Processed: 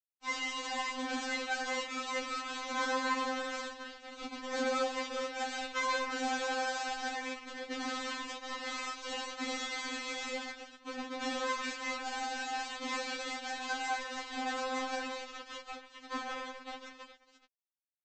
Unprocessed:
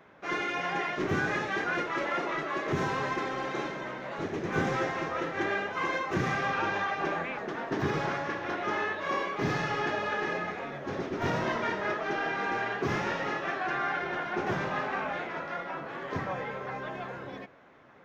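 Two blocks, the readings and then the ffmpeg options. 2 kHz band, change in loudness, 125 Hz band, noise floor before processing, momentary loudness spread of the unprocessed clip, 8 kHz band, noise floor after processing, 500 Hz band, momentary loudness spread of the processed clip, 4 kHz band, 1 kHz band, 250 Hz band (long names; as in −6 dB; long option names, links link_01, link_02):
−5.5 dB, −5.0 dB, below −35 dB, −42 dBFS, 7 LU, can't be measured, −69 dBFS, −7.0 dB, 11 LU, +3.5 dB, −5.0 dB, −7.0 dB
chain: -af "highpass=150,equalizer=frequency=4200:width_type=o:width=0.61:gain=9.5,bandreject=frequency=60:width_type=h:width=6,bandreject=frequency=120:width_type=h:width=6,bandreject=frequency=180:width_type=h:width=6,bandreject=frequency=240:width_type=h:width=6,bandreject=frequency=300:width_type=h:width=6,bandreject=frequency=360:width_type=h:width=6,aresample=16000,acrusher=bits=4:mix=0:aa=0.5,aresample=44100,afftfilt=real='re*3.46*eq(mod(b,12),0)':imag='im*3.46*eq(mod(b,12),0)':win_size=2048:overlap=0.75,volume=-3dB"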